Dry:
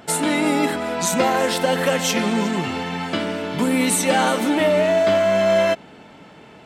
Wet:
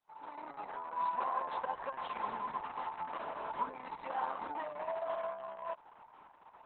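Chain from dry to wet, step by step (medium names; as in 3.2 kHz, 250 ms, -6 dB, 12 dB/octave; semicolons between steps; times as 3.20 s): fade-in on the opening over 1.29 s; compression 2.5:1, threshold -23 dBFS, peak gain reduction 7 dB; band-pass filter 1 kHz, Q 7.5; modulation noise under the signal 29 dB; trim +2 dB; Opus 6 kbps 48 kHz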